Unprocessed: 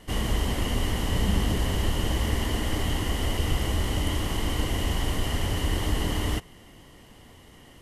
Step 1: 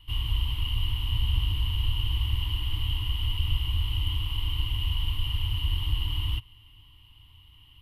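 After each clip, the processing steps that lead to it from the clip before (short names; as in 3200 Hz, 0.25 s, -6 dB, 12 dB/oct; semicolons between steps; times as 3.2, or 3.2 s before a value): EQ curve 110 Hz 0 dB, 200 Hz -26 dB, 300 Hz -17 dB, 460 Hz -30 dB, 680 Hz -30 dB, 960 Hz -8 dB, 1800 Hz -21 dB, 2900 Hz +4 dB, 6700 Hz -29 dB, 14000 Hz -3 dB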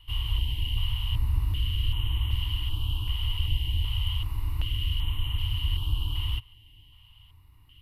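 stepped notch 2.6 Hz 210–4900 Hz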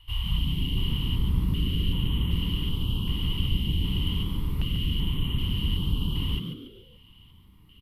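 frequency-shifting echo 0.142 s, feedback 35%, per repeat +110 Hz, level -7.5 dB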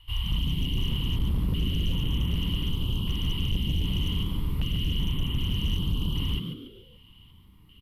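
overloaded stage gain 20.5 dB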